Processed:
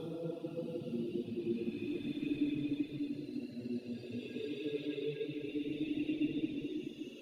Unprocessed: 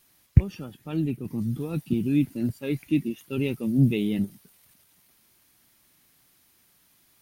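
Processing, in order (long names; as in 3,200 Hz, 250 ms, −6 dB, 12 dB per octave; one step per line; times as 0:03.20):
auto-filter band-pass square 3.9 Hz 480–3,600 Hz
extreme stretch with random phases 4.8×, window 0.50 s, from 0:01.66
reverb reduction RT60 1.1 s
on a send: convolution reverb RT60 0.35 s, pre-delay 65 ms, DRR 10 dB
on the sum: level +1.5 dB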